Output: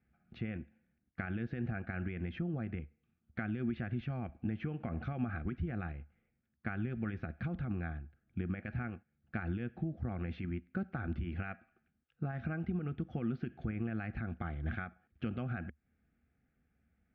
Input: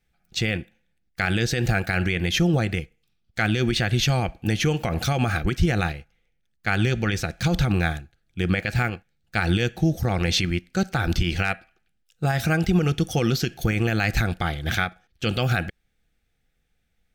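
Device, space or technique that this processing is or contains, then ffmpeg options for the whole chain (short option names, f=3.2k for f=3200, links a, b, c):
bass amplifier: -af "acompressor=threshold=-37dB:ratio=4,highpass=71,equalizer=f=73:t=q:w=4:g=8,equalizer=f=240:t=q:w=4:g=9,equalizer=f=490:t=q:w=4:g=-5,equalizer=f=900:t=q:w=4:g=-6,equalizer=f=1.9k:t=q:w=4:g=-4,lowpass=f=2k:w=0.5412,lowpass=f=2k:w=1.3066,volume=-1dB"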